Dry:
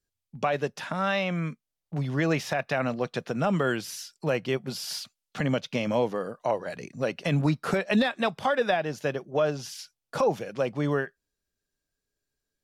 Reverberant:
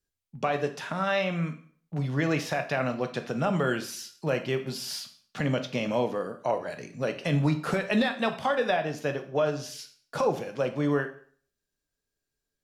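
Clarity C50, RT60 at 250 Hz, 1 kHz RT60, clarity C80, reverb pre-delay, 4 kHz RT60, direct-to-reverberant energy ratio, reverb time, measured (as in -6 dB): 12.0 dB, 0.55 s, 0.50 s, 16.0 dB, 5 ms, 0.45 s, 6.5 dB, 0.50 s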